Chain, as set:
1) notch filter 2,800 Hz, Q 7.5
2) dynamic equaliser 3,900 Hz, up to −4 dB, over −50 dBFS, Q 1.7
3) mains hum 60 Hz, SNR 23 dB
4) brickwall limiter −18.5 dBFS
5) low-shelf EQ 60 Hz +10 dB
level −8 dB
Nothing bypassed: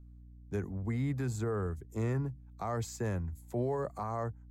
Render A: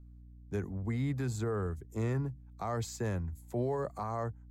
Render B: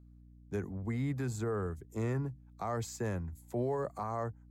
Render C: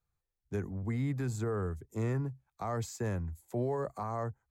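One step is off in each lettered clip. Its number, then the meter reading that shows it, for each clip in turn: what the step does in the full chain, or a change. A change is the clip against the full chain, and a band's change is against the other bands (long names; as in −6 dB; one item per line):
2, 4 kHz band +3.0 dB
5, 125 Hz band −2.0 dB
3, change in momentary loudness spread −1 LU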